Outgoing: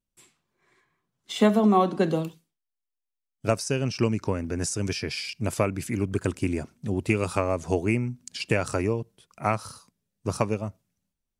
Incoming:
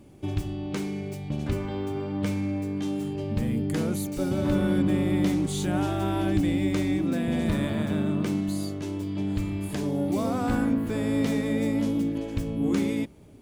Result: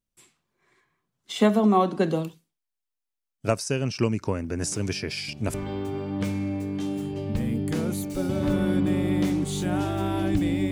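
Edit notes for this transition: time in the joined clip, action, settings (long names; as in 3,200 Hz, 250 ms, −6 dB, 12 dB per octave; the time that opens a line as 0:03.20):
outgoing
0:04.60: mix in incoming from 0:00.62 0.94 s −12 dB
0:05.54: continue with incoming from 0:01.56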